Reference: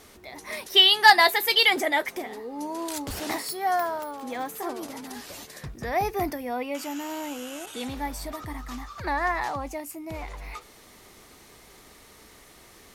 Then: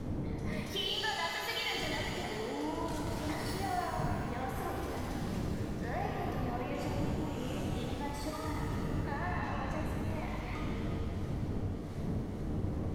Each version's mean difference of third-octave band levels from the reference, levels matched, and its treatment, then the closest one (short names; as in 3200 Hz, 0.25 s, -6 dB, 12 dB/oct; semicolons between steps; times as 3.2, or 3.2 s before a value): 11.5 dB: wind noise 210 Hz -28 dBFS; high shelf 7300 Hz -12 dB; compressor 6:1, threshold -33 dBFS, peak gain reduction 21.5 dB; shimmer reverb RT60 2.5 s, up +7 st, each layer -8 dB, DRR -2 dB; gain -4.5 dB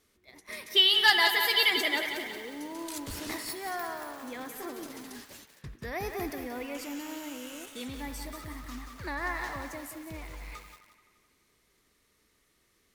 4.0 dB: gate -40 dBFS, range -13 dB; bell 780 Hz -9 dB 0.74 oct; on a send: band-limited delay 86 ms, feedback 76%, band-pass 1600 Hz, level -11 dB; on the sum: lo-fi delay 0.181 s, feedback 55%, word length 7-bit, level -7 dB; gain -5 dB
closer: second